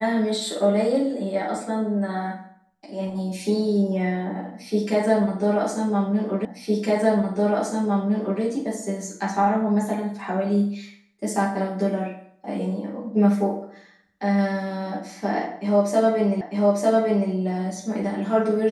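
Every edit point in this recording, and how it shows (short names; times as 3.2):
6.45 repeat of the last 1.96 s
16.41 repeat of the last 0.9 s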